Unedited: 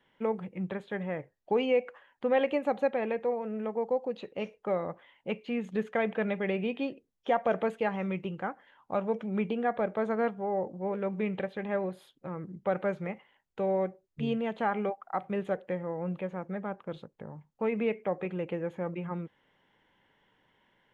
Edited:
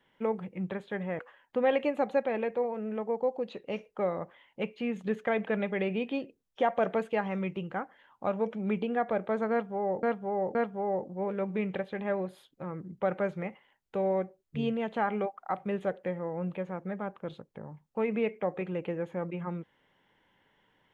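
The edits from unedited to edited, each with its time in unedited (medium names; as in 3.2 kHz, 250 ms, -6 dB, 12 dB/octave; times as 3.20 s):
1.19–1.87 s: delete
10.19–10.71 s: loop, 3 plays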